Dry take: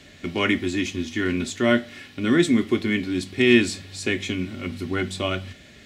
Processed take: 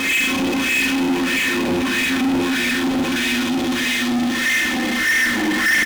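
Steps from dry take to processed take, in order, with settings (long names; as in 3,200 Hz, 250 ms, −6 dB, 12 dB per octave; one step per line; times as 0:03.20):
comb filter 3.9 ms, depth 92%
extreme stretch with random phases 27×, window 0.25 s, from 0:00.93
four-comb reverb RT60 0.98 s, combs from 33 ms, DRR −8 dB
LFO wah 1.6 Hz 730–2,000 Hz, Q 3.8
power curve on the samples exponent 0.35
level +4.5 dB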